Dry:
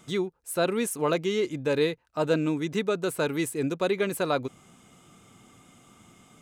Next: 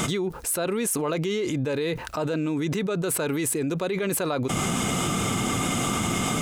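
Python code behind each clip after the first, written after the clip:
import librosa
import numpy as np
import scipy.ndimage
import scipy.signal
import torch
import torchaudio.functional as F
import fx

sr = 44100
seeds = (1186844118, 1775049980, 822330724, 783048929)

y = fx.env_flatten(x, sr, amount_pct=100)
y = F.gain(torch.from_numpy(y), -6.0).numpy()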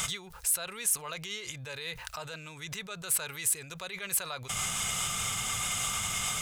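y = fx.tone_stack(x, sr, knobs='10-0-10')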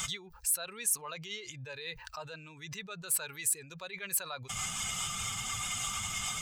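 y = fx.bin_expand(x, sr, power=1.5)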